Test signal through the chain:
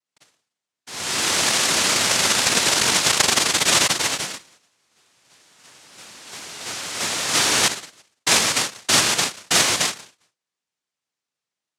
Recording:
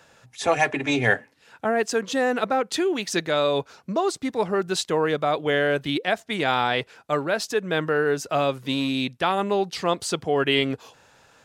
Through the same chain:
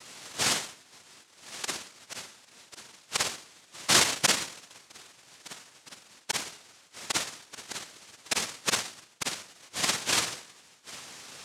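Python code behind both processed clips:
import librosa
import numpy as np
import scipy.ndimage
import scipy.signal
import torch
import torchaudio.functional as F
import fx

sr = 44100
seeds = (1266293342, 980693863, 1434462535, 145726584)

y = fx.gate_flip(x, sr, shuts_db=-18.0, range_db=-42)
y = fx.rev_schroeder(y, sr, rt60_s=0.51, comb_ms=38, drr_db=-2.5)
y = fx.noise_vocoder(y, sr, seeds[0], bands=1)
y = y * librosa.db_to_amplitude(5.0)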